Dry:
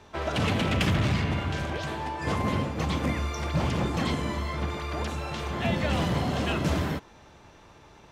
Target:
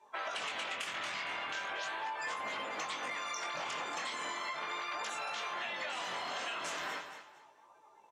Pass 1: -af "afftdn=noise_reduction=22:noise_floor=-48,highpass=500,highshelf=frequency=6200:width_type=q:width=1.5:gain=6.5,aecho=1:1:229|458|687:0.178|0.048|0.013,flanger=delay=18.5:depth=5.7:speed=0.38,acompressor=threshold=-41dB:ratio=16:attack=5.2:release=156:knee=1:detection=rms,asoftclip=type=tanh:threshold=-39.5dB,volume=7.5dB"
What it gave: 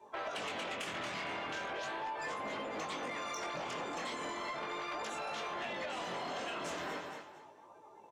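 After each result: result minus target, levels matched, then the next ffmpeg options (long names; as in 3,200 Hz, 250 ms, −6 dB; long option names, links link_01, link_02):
soft clipping: distortion +12 dB; 500 Hz band +6.0 dB
-af "afftdn=noise_reduction=22:noise_floor=-48,highpass=500,highshelf=frequency=6200:width_type=q:width=1.5:gain=6.5,aecho=1:1:229|458|687:0.178|0.048|0.013,flanger=delay=18.5:depth=5.7:speed=0.38,acompressor=threshold=-41dB:ratio=16:attack=5.2:release=156:knee=1:detection=rms,asoftclip=type=tanh:threshold=-32dB,volume=7.5dB"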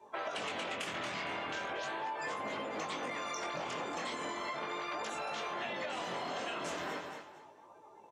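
500 Hz band +5.5 dB
-af "afftdn=noise_reduction=22:noise_floor=-48,highpass=1000,highshelf=frequency=6200:width_type=q:width=1.5:gain=6.5,aecho=1:1:229|458|687:0.178|0.048|0.013,flanger=delay=18.5:depth=5.7:speed=0.38,acompressor=threshold=-41dB:ratio=16:attack=5.2:release=156:knee=1:detection=rms,asoftclip=type=tanh:threshold=-32dB,volume=7.5dB"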